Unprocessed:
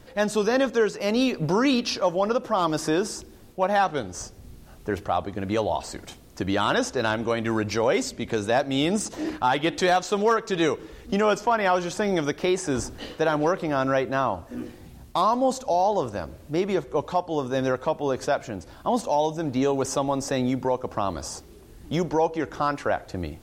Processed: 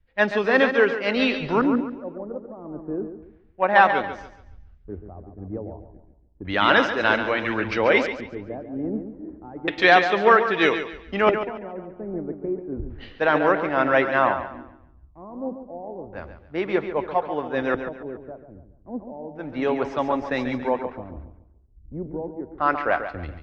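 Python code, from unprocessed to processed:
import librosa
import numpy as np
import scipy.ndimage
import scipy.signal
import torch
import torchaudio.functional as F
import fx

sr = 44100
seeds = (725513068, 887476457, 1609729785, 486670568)

p1 = fx.graphic_eq(x, sr, hz=(125, 2000, 8000), db=(-7, 9, -10))
p2 = fx.filter_lfo_lowpass(p1, sr, shape='square', hz=0.31, low_hz=360.0, high_hz=4000.0, q=0.88)
p3 = fx.high_shelf(p2, sr, hz=7300.0, db=-11.5)
p4 = p3 + fx.echo_feedback(p3, sr, ms=141, feedback_pct=53, wet_db=-7.0, dry=0)
y = fx.band_widen(p4, sr, depth_pct=100)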